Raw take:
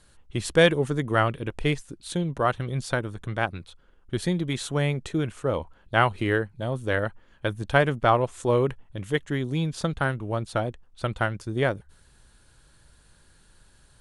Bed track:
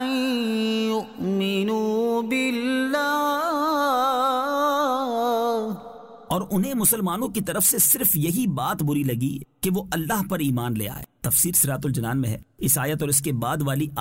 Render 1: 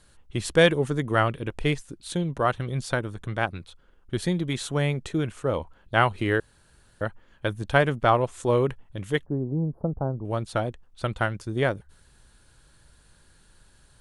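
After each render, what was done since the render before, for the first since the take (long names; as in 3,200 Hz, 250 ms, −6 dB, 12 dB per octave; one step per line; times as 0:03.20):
0:06.40–0:07.01: fill with room tone
0:09.26–0:10.25: inverse Chebyshev band-stop filter 2,300–9,200 Hz, stop band 60 dB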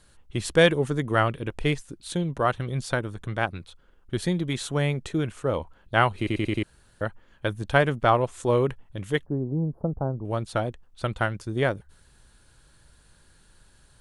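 0:06.18: stutter in place 0.09 s, 5 plays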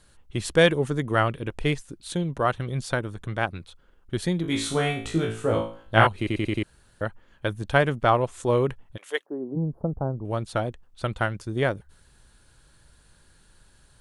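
0:04.42–0:06.07: flutter between parallel walls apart 3.1 metres, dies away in 0.43 s
0:08.96–0:09.55: high-pass filter 680 Hz → 190 Hz 24 dB per octave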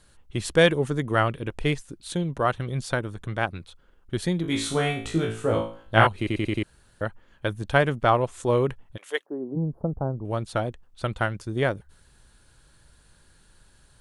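no processing that can be heard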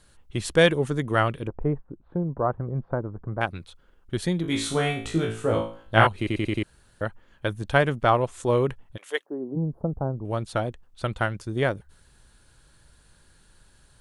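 0:01.47–0:03.41: low-pass filter 1,100 Hz 24 dB per octave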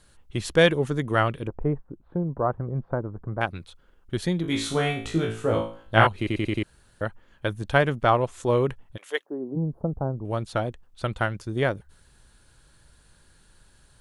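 dynamic equaliser 8,700 Hz, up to −5 dB, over −56 dBFS, Q 3.3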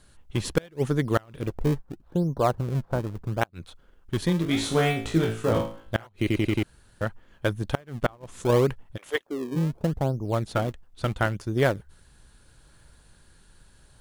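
gate with flip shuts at −10 dBFS, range −31 dB
in parallel at −10 dB: sample-and-hold swept by an LFO 36×, swing 160% 0.76 Hz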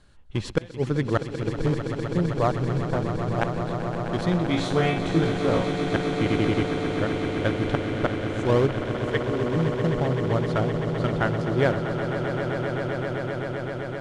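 high-frequency loss of the air 83 metres
on a send: echo that builds up and dies away 129 ms, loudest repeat 8, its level −11 dB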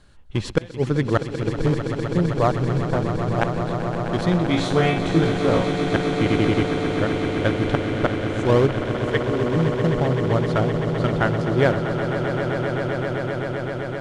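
level +3.5 dB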